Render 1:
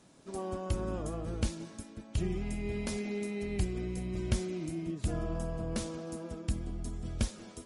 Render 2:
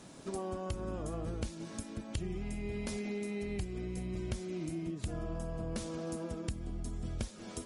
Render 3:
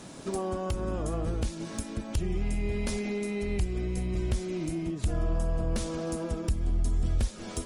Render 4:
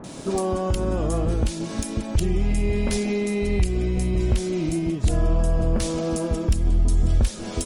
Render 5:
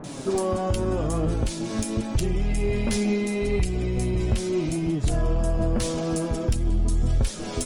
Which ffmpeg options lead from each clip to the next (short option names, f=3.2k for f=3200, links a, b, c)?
-af "acompressor=threshold=-45dB:ratio=4,volume=8dB"
-af "aeval=exprs='0.106*sin(PI/2*2*val(0)/0.106)':c=same,asubboost=boost=2.5:cutoff=83,volume=-2.5dB"
-filter_complex "[0:a]acrossover=split=1500[a][b];[b]adelay=40[c];[a][c]amix=inputs=2:normalize=0,volume=8dB"
-filter_complex "[0:a]flanger=delay=6.5:depth=3:regen=42:speed=0.81:shape=triangular,asplit=2[a][b];[b]asoftclip=type=tanh:threshold=-32dB,volume=-7dB[c];[a][c]amix=inputs=2:normalize=0,volume=2dB"